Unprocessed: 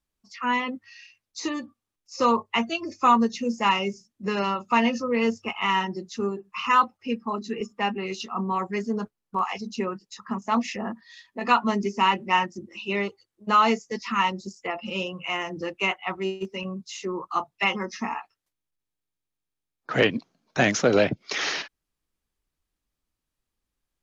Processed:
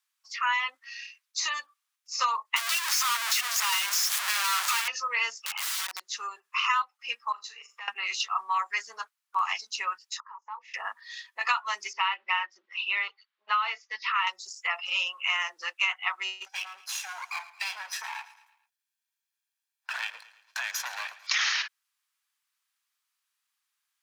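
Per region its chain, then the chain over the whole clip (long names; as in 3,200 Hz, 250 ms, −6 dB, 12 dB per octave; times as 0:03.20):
0:02.56–0:04.88: sign of each sample alone + high-pass filter 690 Hz
0:05.40–0:06.13: wrap-around overflow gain 26 dB + downward compressor, threshold −35 dBFS
0:07.32–0:07.88: downward compressor 8 to 1, threshold −39 dBFS + flutter between parallel walls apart 6.9 metres, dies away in 0.23 s
0:10.20–0:10.74: downward compressor 5 to 1, threshold −28 dBFS + pair of resonant band-passes 670 Hz, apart 0.87 octaves
0:11.93–0:14.27: low-pass filter 3,900 Hz 24 dB per octave + downward compressor 1.5 to 1, threshold −28 dBFS
0:16.46–0:21.27: lower of the sound and its delayed copy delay 1.2 ms + downward compressor, threshold −33 dBFS + repeating echo 111 ms, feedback 48%, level −16.5 dB
whole clip: high-pass filter 1,100 Hz 24 dB per octave; downward compressor 12 to 1, threshold −29 dBFS; level +6.5 dB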